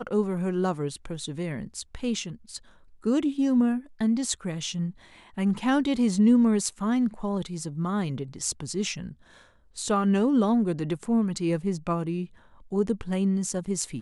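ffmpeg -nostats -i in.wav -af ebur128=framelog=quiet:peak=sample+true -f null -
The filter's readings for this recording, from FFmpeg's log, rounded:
Integrated loudness:
  I:         -26.7 LUFS
  Threshold: -37.2 LUFS
Loudness range:
  LRA:         5.1 LU
  Threshold: -46.8 LUFS
  LRA low:   -30.0 LUFS
  LRA high:  -25.0 LUFS
Sample peak:
  Peak:       -9.1 dBFS
True peak:
  Peak:       -9.0 dBFS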